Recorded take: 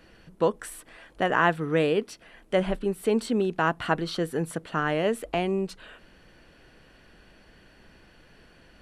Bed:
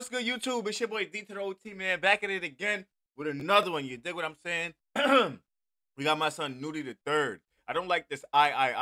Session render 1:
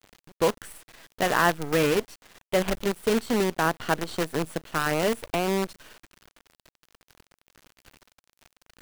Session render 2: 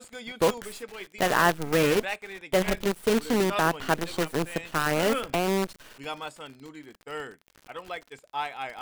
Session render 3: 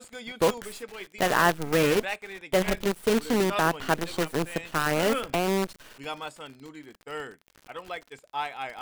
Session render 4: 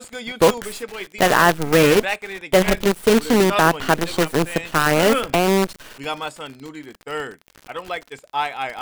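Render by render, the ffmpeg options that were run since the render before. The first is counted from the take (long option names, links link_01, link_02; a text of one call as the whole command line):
ffmpeg -i in.wav -af "acrusher=bits=5:dc=4:mix=0:aa=0.000001" out.wav
ffmpeg -i in.wav -i bed.wav -filter_complex "[1:a]volume=-8.5dB[link_01];[0:a][link_01]amix=inputs=2:normalize=0" out.wav
ffmpeg -i in.wav -af anull out.wav
ffmpeg -i in.wav -af "volume=8.5dB,alimiter=limit=-2dB:level=0:latency=1" out.wav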